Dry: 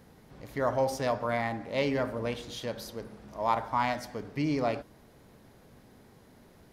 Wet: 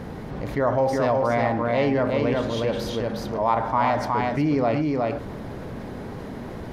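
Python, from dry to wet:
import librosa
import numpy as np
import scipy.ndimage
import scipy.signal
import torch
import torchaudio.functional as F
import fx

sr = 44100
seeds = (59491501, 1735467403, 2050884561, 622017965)

y = fx.lowpass(x, sr, hz=1700.0, slope=6)
y = y + 10.0 ** (-4.5 / 20.0) * np.pad(y, (int(365 * sr / 1000.0), 0))[:len(y)]
y = fx.env_flatten(y, sr, amount_pct=50)
y = F.gain(torch.from_numpy(y), 5.5).numpy()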